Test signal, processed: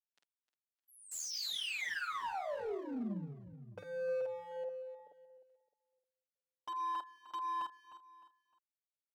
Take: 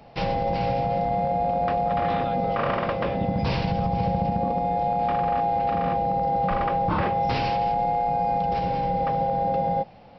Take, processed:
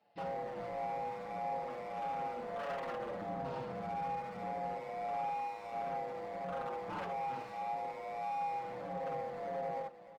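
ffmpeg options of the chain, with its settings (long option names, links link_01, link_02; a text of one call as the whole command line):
ffmpeg -i in.wav -filter_complex "[0:a]highpass=170,lowpass=4200,equalizer=frequency=1100:width_type=o:width=0.25:gain=-5,bandreject=frequency=2300:width=12,asplit=2[link_01][link_02];[link_02]adelay=49,volume=-4dB[link_03];[link_01][link_03]amix=inputs=2:normalize=0,asplit=2[link_04][link_05];[link_05]alimiter=limit=-20dB:level=0:latency=1:release=86,volume=-1.5dB[link_06];[link_04][link_06]amix=inputs=2:normalize=0,asoftclip=type=tanh:threshold=-17.5dB,afwtdn=0.0398,lowshelf=frequency=480:gain=-10.5,acompressor=threshold=-27dB:ratio=10,asoftclip=type=hard:threshold=-28.5dB,aecho=1:1:306|612|918:0.224|0.0761|0.0259,asplit=2[link_07][link_08];[link_08]adelay=6.3,afreqshift=-1.6[link_09];[link_07][link_09]amix=inputs=2:normalize=1,volume=-5.5dB" out.wav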